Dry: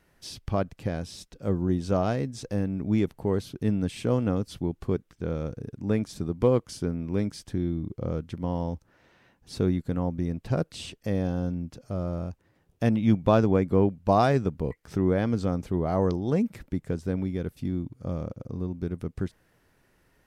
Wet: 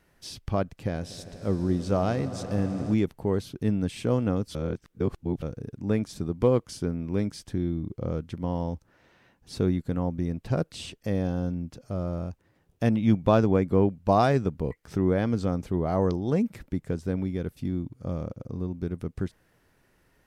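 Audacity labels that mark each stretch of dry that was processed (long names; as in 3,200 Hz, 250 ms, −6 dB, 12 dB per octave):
0.740000	2.940000	echo that builds up and dies away 80 ms, loudest repeat 5, its level −18 dB
4.550000	5.420000	reverse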